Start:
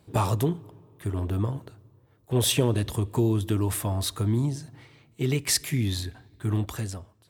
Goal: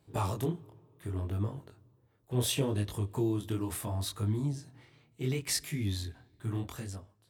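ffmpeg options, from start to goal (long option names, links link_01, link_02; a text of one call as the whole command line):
ffmpeg -i in.wav -af "flanger=delay=19.5:depth=6.6:speed=0.7,volume=-4.5dB" out.wav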